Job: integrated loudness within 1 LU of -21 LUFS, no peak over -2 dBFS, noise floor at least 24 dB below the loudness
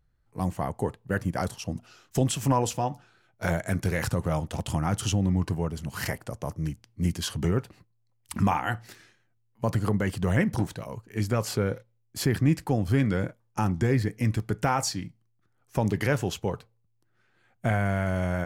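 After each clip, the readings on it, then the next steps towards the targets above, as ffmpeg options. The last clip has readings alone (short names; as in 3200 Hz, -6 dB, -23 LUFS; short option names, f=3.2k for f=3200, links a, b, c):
loudness -28.5 LUFS; peak -11.5 dBFS; loudness target -21.0 LUFS
-> -af "volume=7.5dB"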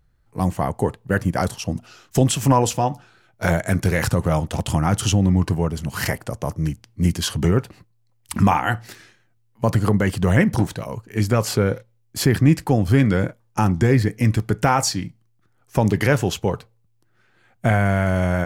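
loudness -21.0 LUFS; peak -4.0 dBFS; noise floor -62 dBFS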